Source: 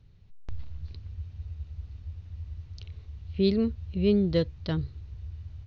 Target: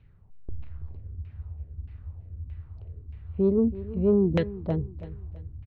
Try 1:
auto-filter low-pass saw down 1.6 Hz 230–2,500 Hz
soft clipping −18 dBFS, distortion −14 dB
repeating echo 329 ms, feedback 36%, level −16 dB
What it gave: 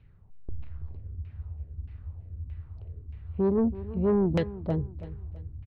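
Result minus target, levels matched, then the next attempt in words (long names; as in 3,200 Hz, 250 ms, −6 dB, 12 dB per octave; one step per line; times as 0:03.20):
soft clipping: distortion +12 dB
auto-filter low-pass saw down 1.6 Hz 230–2,500 Hz
soft clipping −10 dBFS, distortion −26 dB
repeating echo 329 ms, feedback 36%, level −16 dB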